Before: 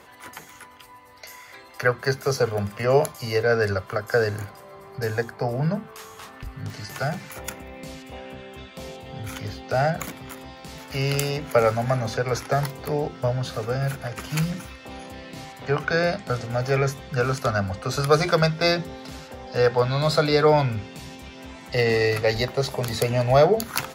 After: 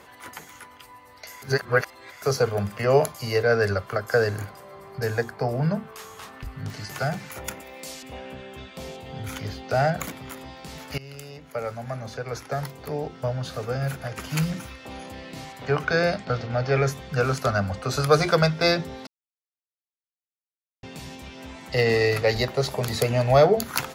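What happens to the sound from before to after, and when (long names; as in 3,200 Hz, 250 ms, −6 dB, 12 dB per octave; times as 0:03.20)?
0:01.42–0:02.22: reverse
0:07.60–0:08.03: bass and treble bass −14 dB, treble +10 dB
0:10.98–0:14.57: fade in, from −20 dB
0:16.25–0:16.77: low-pass filter 5,100 Hz 24 dB per octave
0:19.07–0:20.83: silence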